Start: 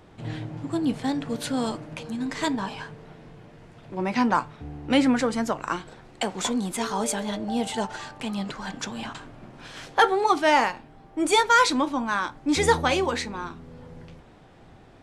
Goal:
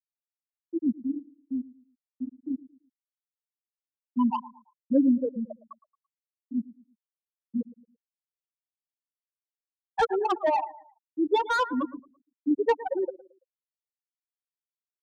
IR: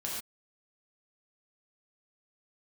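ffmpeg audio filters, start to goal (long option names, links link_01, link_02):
-filter_complex "[0:a]afftfilt=real='re*gte(hypot(re,im),0.562)':imag='im*gte(hypot(re,im),0.562)':win_size=1024:overlap=0.75,highshelf=frequency=3800:gain=-11,aecho=1:1:112|224|336:0.112|0.0381|0.013,acrossover=split=160|620|3400[link_01][link_02][link_03][link_04];[link_03]asoftclip=type=tanh:threshold=-24dB[link_05];[link_01][link_02][link_05][link_04]amix=inputs=4:normalize=0"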